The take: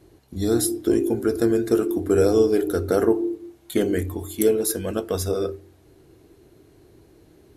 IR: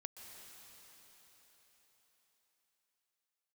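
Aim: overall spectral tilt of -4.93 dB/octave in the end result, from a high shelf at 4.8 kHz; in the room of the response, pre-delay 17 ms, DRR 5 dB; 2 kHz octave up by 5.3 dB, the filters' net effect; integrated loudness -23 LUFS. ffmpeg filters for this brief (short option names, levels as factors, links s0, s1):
-filter_complex "[0:a]equalizer=f=2000:t=o:g=8,highshelf=f=4800:g=-5.5,asplit=2[s0][s1];[1:a]atrim=start_sample=2205,adelay=17[s2];[s1][s2]afir=irnorm=-1:irlink=0,volume=0.891[s3];[s0][s3]amix=inputs=2:normalize=0,volume=0.841"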